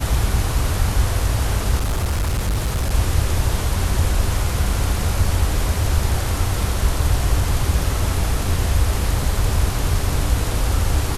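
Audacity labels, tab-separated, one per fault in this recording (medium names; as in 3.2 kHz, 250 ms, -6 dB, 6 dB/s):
1.780000	2.900000	clipped -16.5 dBFS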